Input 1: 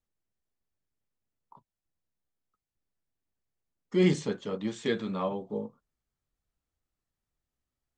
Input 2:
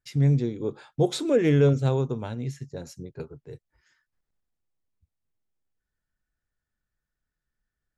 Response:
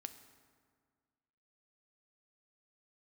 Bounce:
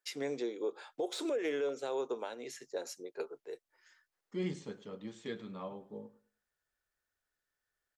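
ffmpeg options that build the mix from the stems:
-filter_complex "[0:a]adelay=400,volume=0.251,asplit=2[s0][s1];[s1]volume=0.119[s2];[1:a]deesser=0.75,highpass=f=390:w=0.5412,highpass=f=390:w=1.3066,volume=1.19[s3];[s2]aecho=0:1:104|208|312|416:1|0.25|0.0625|0.0156[s4];[s0][s3][s4]amix=inputs=3:normalize=0,alimiter=level_in=1.41:limit=0.0631:level=0:latency=1:release=281,volume=0.708"

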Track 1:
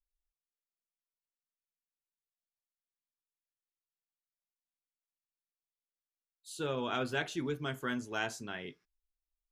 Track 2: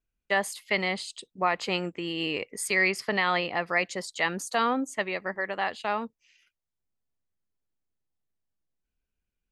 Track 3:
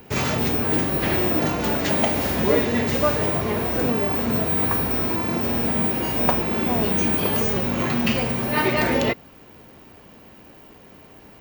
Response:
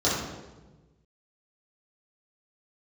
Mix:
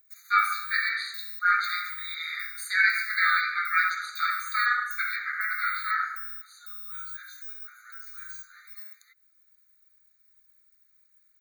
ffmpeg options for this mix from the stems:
-filter_complex "[0:a]highshelf=f=4400:g=10.5,volume=0.141,asplit=2[s0][s1];[s1]volume=0.473[s2];[1:a]highpass=720,equalizer=f=6300:w=1.6:g=-13,aeval=exprs='val(0)*sin(2*PI*430*n/s+430*0.5/0.47*sin(2*PI*0.47*n/s))':c=same,volume=1.19,asplit=2[s3][s4];[s4]volume=0.501[s5];[2:a]firequalizer=gain_entry='entry(460,0);entry(910,-14);entry(10000,7)':delay=0.05:min_phase=1,acompressor=threshold=0.0562:ratio=4,volume=0.237[s6];[3:a]atrim=start_sample=2205[s7];[s2][s5]amix=inputs=2:normalize=0[s8];[s8][s7]afir=irnorm=-1:irlink=0[s9];[s0][s3][s6][s9]amix=inputs=4:normalize=0,afftfilt=real='re*eq(mod(floor(b*sr/1024/1200),2),1)':imag='im*eq(mod(floor(b*sr/1024/1200),2),1)':win_size=1024:overlap=0.75"

